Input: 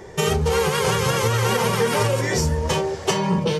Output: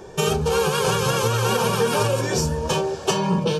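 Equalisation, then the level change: Butterworth band-stop 2 kHz, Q 4.3; peaking EQ 84 Hz -9 dB 0.41 oct; 0.0 dB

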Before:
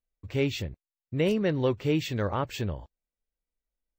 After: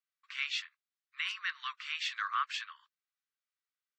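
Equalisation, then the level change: steep high-pass 1.1 kHz 96 dB/octave; distance through air 130 m; peaking EQ 2.4 kHz -2.5 dB 0.77 oct; +5.5 dB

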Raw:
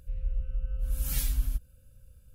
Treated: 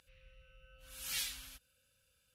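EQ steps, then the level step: band-pass filter 3.2 kHz, Q 0.86; +4.5 dB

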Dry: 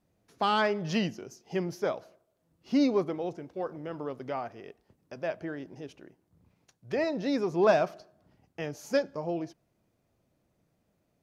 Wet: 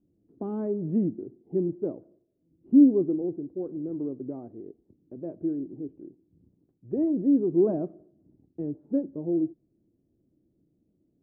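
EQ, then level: resonant low-pass 320 Hz, resonance Q 3.6; distance through air 410 m; 0.0 dB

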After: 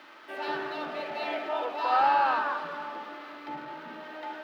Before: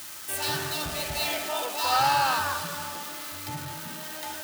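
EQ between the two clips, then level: high-pass 260 Hz 24 dB/octave; distance through air 340 m; treble shelf 3.4 kHz -10 dB; +2.5 dB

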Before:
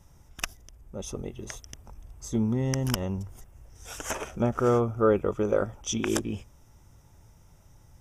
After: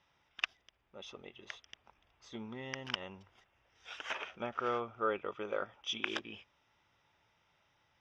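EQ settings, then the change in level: band-pass filter 3.4 kHz, Q 1.3; distance through air 320 m; +7.0 dB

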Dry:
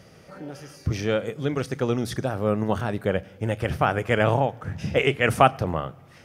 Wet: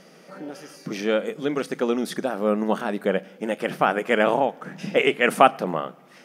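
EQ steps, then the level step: dynamic bell 5.7 kHz, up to -4 dB, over -51 dBFS, Q 2.9; brick-wall FIR high-pass 160 Hz; +2.0 dB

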